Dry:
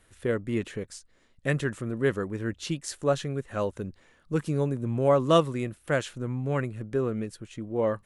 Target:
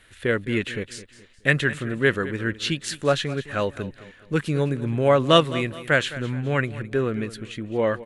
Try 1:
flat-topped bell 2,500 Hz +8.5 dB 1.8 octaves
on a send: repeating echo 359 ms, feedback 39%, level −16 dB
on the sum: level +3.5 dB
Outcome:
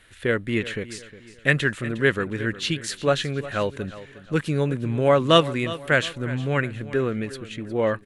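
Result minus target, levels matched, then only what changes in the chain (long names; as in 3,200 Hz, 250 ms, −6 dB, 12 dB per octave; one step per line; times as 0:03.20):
echo 148 ms late
change: repeating echo 211 ms, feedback 39%, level −16 dB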